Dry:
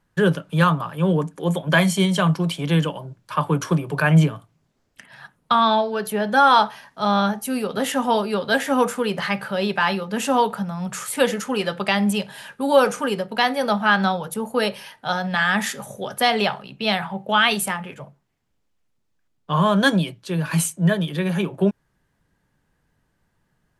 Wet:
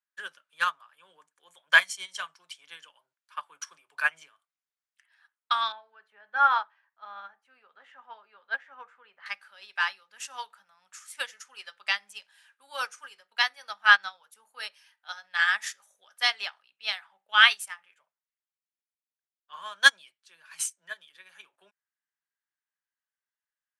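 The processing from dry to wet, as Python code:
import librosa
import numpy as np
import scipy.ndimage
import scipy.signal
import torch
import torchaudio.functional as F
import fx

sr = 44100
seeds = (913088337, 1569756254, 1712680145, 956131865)

y = fx.lowpass(x, sr, hz=1700.0, slope=12, at=(5.72, 9.26))
y = scipy.signal.sosfilt(scipy.signal.cheby1(2, 1.0, [1500.0, 9400.0], 'bandpass', fs=sr, output='sos'), y)
y = fx.dynamic_eq(y, sr, hz=5600.0, q=2.8, threshold_db=-49.0, ratio=4.0, max_db=7)
y = fx.upward_expand(y, sr, threshold_db=-32.0, expansion=2.5)
y = y * 10.0 ** (4.5 / 20.0)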